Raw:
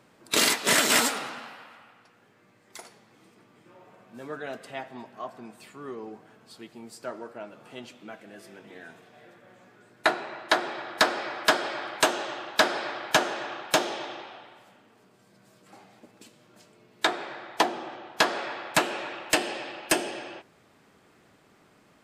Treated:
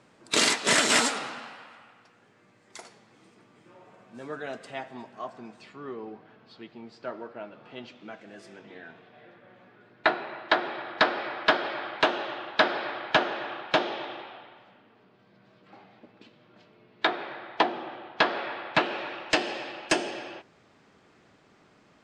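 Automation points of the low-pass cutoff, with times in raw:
low-pass 24 dB/octave
5.23 s 8.9 kHz
5.96 s 4.3 kHz
7.73 s 4.3 kHz
8.51 s 8.5 kHz
8.82 s 4 kHz
18.75 s 4 kHz
19.64 s 7 kHz

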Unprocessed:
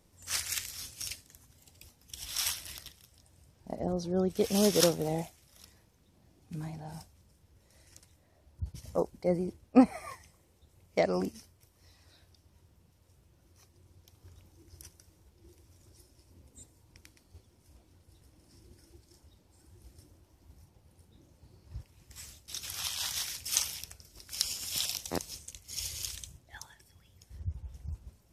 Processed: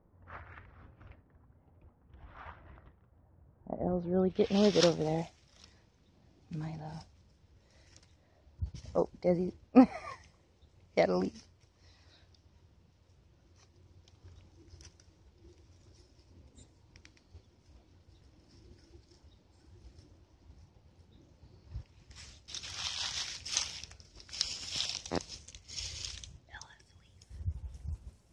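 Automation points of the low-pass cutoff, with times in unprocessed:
low-pass 24 dB/octave
3.69 s 1.4 kHz
4.32 s 3.6 kHz
5.02 s 6 kHz
26.62 s 6 kHz
27.38 s 9.9 kHz

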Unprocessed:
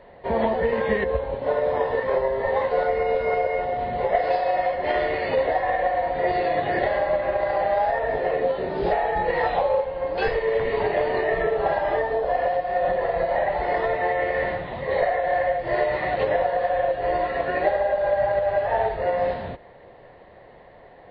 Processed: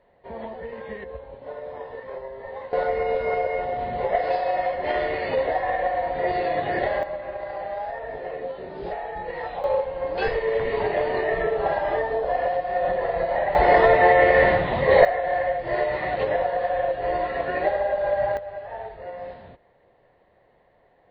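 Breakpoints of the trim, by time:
-13 dB
from 2.73 s -1.5 dB
from 7.03 s -9 dB
from 9.64 s -1 dB
from 13.55 s +8 dB
from 15.05 s -1.5 dB
from 18.37 s -12.5 dB

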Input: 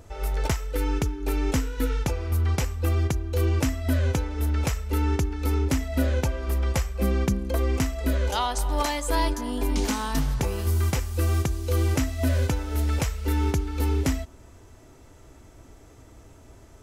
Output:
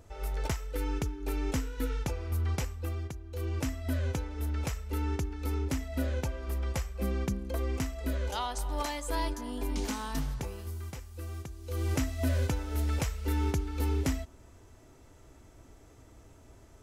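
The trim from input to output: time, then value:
2.61 s -7 dB
3.18 s -15.5 dB
3.67 s -8 dB
10.25 s -8 dB
10.81 s -16.5 dB
11.55 s -16.5 dB
11.95 s -5.5 dB

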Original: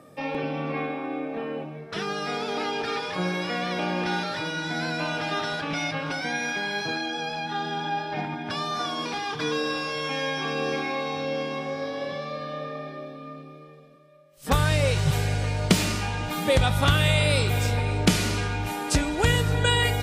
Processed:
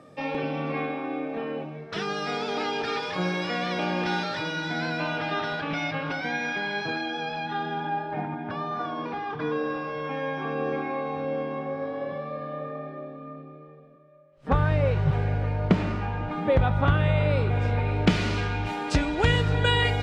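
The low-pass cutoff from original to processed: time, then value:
4.23 s 6.4 kHz
5.23 s 3.3 kHz
7.43 s 3.3 kHz
8.08 s 1.5 kHz
17.47 s 1.5 kHz
18.37 s 4 kHz

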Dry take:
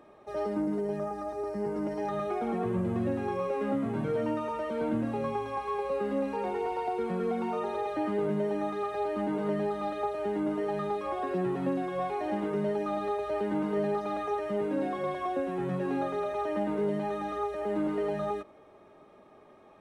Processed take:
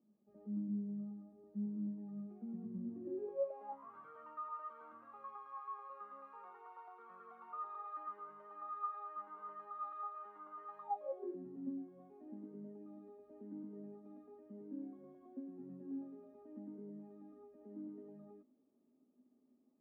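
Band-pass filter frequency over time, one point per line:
band-pass filter, Q 17
2.77 s 210 Hz
3.93 s 1.2 kHz
10.75 s 1.2 kHz
11.44 s 250 Hz

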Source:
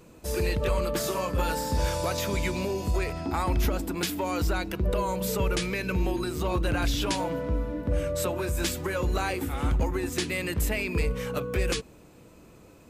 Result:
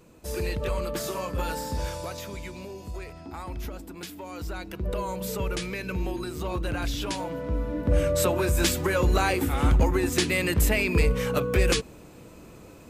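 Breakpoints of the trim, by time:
1.64 s -2.5 dB
2.43 s -10 dB
4.29 s -10 dB
4.93 s -3 dB
7.32 s -3 dB
7.97 s +5 dB

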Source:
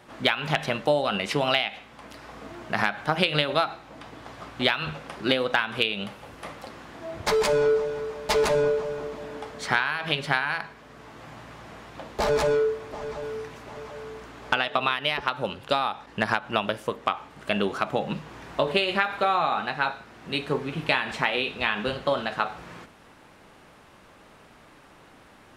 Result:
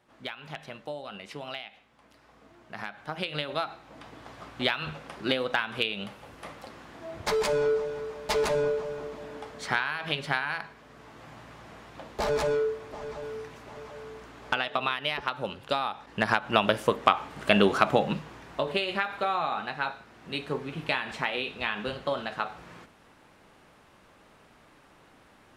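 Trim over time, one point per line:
2.64 s -15 dB
3.97 s -4 dB
15.92 s -4 dB
16.80 s +4.5 dB
17.90 s +4.5 dB
18.44 s -5 dB

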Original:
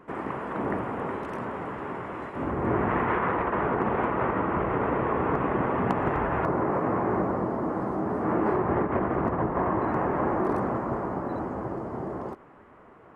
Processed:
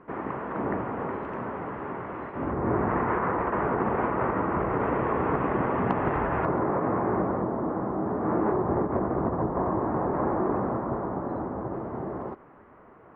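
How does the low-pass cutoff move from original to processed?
2.2 kHz
from 2.53 s 1.7 kHz
from 3.42 s 2.2 kHz
from 4.80 s 3.2 kHz
from 6.58 s 2 kHz
from 7.42 s 1.5 kHz
from 8.52 s 1.1 kHz
from 10.14 s 1.4 kHz
from 11.73 s 2.2 kHz

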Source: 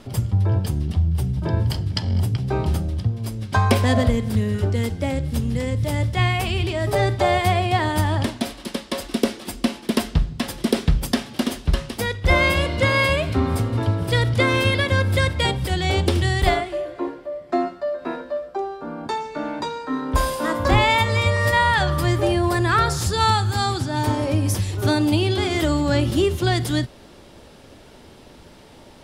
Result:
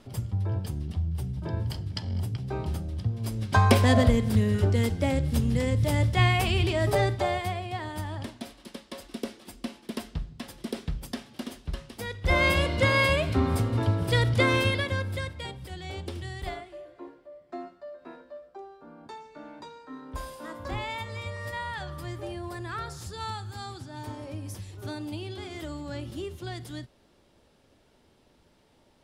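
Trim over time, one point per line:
2.86 s -9.5 dB
3.38 s -2 dB
6.85 s -2 dB
7.61 s -14 dB
11.89 s -14 dB
12.48 s -4 dB
14.54 s -4 dB
15.44 s -17 dB

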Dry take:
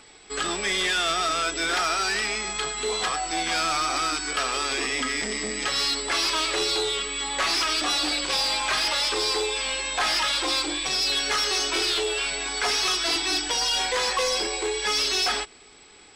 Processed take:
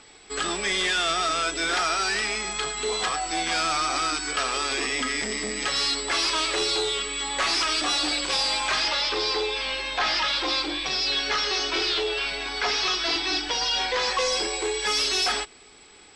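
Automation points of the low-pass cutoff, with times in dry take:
low-pass 24 dB/octave
8.56 s 9.7 kHz
9.02 s 5.5 kHz
13.94 s 5.5 kHz
14.61 s 12 kHz

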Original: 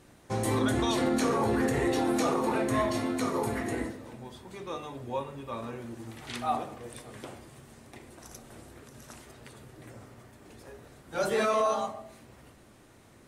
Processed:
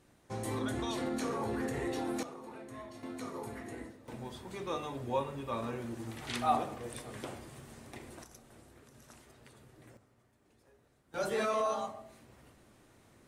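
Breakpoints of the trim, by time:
-8.5 dB
from 2.23 s -19.5 dB
from 3.03 s -12 dB
from 4.08 s +0.5 dB
from 8.24 s -8.5 dB
from 9.97 s -17.5 dB
from 11.14 s -5.5 dB

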